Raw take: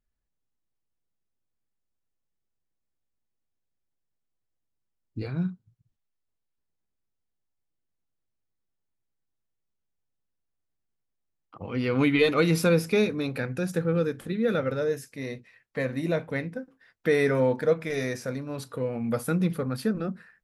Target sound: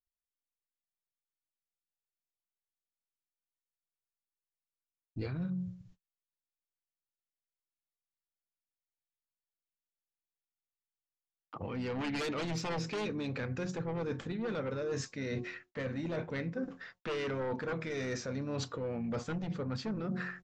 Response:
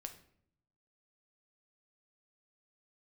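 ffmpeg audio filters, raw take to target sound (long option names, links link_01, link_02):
-filter_complex "[0:a]aresample=16000,aresample=44100,aeval=exprs='0.355*sin(PI/2*3.55*val(0)/0.355)':channel_layout=same,alimiter=limit=-13.5dB:level=0:latency=1:release=125,bandreject=frequency=181.2:width_type=h:width=4,bandreject=frequency=362.4:width_type=h:width=4,bandreject=frequency=543.6:width_type=h:width=4,bandreject=frequency=724.8:width_type=h:width=4,bandreject=frequency=906:width_type=h:width=4,bandreject=frequency=1087.2:width_type=h:width=4,areverse,acompressor=threshold=-32dB:ratio=16,areverse,asplit=2[link_01][link_02];[link_02]asetrate=33038,aresample=44100,atempo=1.33484,volume=-13dB[link_03];[link_01][link_03]amix=inputs=2:normalize=0,agate=range=-36dB:threshold=-57dB:ratio=16:detection=peak,volume=-2dB"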